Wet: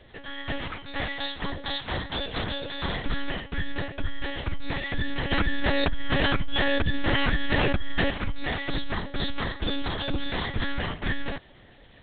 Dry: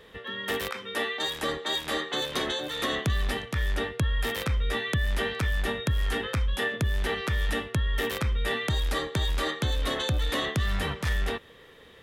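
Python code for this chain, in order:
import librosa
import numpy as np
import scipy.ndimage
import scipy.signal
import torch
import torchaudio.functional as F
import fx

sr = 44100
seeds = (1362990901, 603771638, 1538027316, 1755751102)

y = fx.lpc_monotone(x, sr, seeds[0], pitch_hz=280.0, order=8)
y = fx.env_flatten(y, sr, amount_pct=100, at=(5.3, 8.09), fade=0.02)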